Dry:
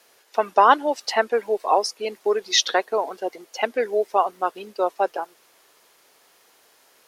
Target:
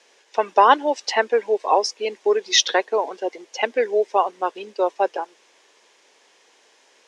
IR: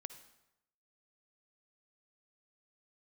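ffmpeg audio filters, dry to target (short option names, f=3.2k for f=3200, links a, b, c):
-af "highpass=290,equalizer=f=690:t=q:w=4:g=-5,equalizer=f=1.3k:t=q:w=4:g=-9,equalizer=f=4.4k:t=q:w=4:g=-5,lowpass=f=7.1k:w=0.5412,lowpass=f=7.1k:w=1.3066,volume=4dB"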